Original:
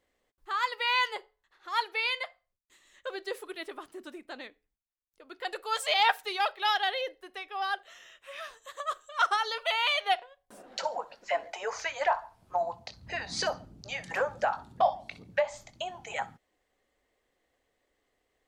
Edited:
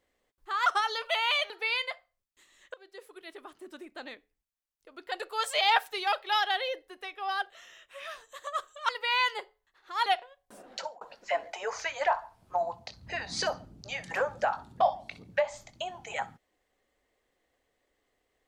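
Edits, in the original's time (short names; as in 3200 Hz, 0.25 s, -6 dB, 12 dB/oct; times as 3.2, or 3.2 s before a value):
0.66–1.83 swap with 9.22–10.06
3.07–4.34 fade in, from -21.5 dB
10.71–11.01 fade out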